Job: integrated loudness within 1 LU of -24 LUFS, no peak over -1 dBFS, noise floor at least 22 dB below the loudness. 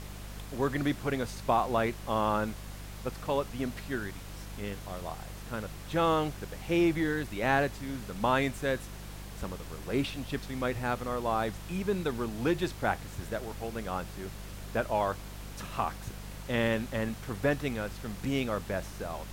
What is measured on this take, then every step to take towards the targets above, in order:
hum 50 Hz; harmonics up to 200 Hz; hum level -41 dBFS; noise floor -44 dBFS; noise floor target -55 dBFS; loudness -32.5 LUFS; peak -12.0 dBFS; loudness target -24.0 LUFS
-> de-hum 50 Hz, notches 4; noise print and reduce 11 dB; gain +8.5 dB

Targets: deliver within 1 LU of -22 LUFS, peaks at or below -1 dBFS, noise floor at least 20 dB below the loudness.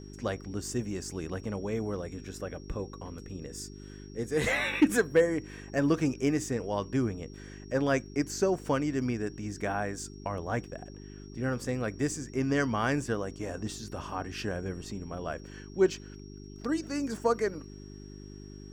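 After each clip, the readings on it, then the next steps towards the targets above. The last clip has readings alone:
hum 50 Hz; harmonics up to 400 Hz; hum level -44 dBFS; steady tone 5600 Hz; tone level -56 dBFS; loudness -31.5 LUFS; peak -13.0 dBFS; loudness target -22.0 LUFS
-> de-hum 50 Hz, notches 8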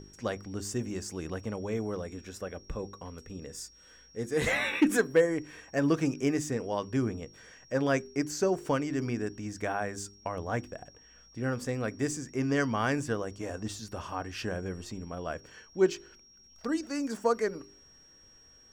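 hum none; steady tone 5600 Hz; tone level -56 dBFS
-> notch 5600 Hz, Q 30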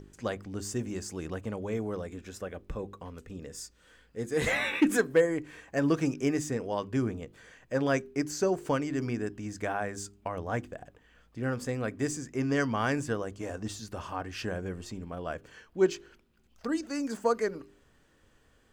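steady tone none; loudness -32.0 LUFS; peak -13.0 dBFS; loudness target -22.0 LUFS
-> gain +10 dB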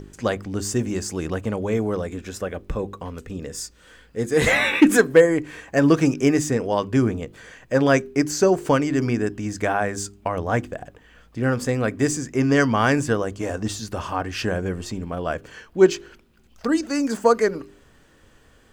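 loudness -22.0 LUFS; peak -3.0 dBFS; noise floor -54 dBFS

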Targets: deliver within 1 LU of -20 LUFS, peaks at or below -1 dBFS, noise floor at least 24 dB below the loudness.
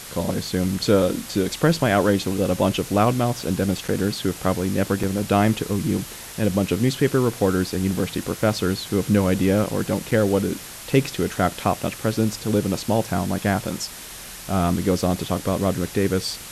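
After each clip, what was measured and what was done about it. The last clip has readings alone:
dropouts 3; longest dropout 4.5 ms; noise floor -38 dBFS; noise floor target -47 dBFS; loudness -22.5 LUFS; peak -6.0 dBFS; loudness target -20.0 LUFS
-> interpolate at 3.88/5.03/10.11, 4.5 ms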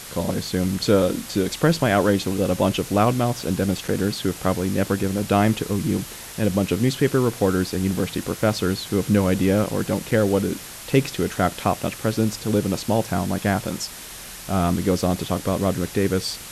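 dropouts 0; noise floor -38 dBFS; noise floor target -47 dBFS
-> denoiser 9 dB, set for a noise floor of -38 dBFS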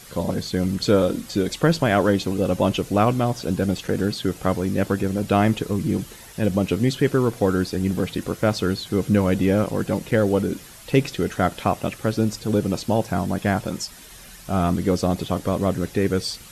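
noise floor -43 dBFS; noise floor target -47 dBFS
-> denoiser 6 dB, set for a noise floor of -43 dBFS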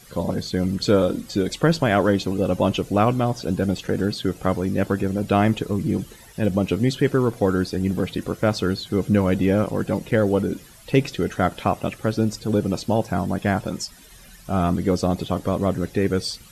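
noise floor -47 dBFS; loudness -22.5 LUFS; peak -6.0 dBFS; loudness target -20.0 LUFS
-> gain +2.5 dB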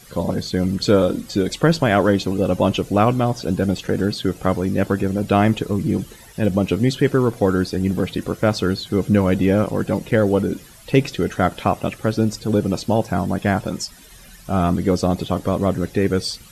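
loudness -20.0 LUFS; peak -3.5 dBFS; noise floor -44 dBFS

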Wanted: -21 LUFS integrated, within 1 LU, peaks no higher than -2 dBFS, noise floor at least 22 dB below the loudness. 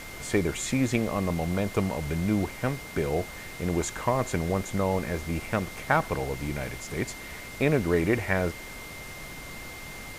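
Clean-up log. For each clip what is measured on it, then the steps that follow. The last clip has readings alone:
steady tone 2100 Hz; tone level -43 dBFS; noise floor -41 dBFS; noise floor target -51 dBFS; loudness -28.5 LUFS; peak -7.0 dBFS; loudness target -21.0 LUFS
-> notch 2100 Hz, Q 30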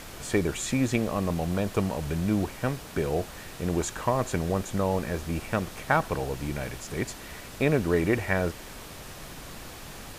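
steady tone none; noise floor -43 dBFS; noise floor target -51 dBFS
-> noise print and reduce 8 dB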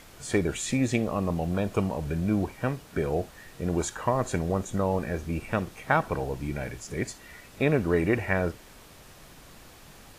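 noise floor -51 dBFS; loudness -28.5 LUFS; peak -7.5 dBFS; loudness target -21.0 LUFS
-> gain +7.5 dB; limiter -2 dBFS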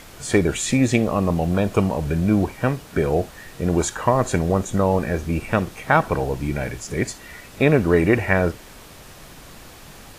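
loudness -21.0 LUFS; peak -2.0 dBFS; noise floor -43 dBFS

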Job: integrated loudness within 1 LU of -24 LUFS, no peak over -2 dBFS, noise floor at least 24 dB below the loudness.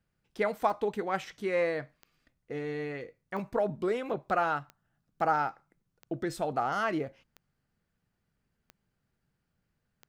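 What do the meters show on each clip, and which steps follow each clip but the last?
clicks 8; loudness -32.0 LUFS; peak -13.5 dBFS; loudness target -24.0 LUFS
-> de-click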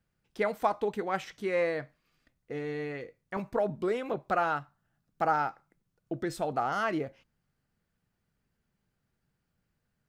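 clicks 0; loudness -32.0 LUFS; peak -13.5 dBFS; loudness target -24.0 LUFS
-> gain +8 dB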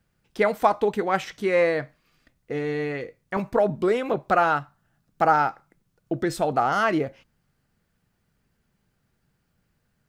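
loudness -24.0 LUFS; peak -5.5 dBFS; noise floor -73 dBFS

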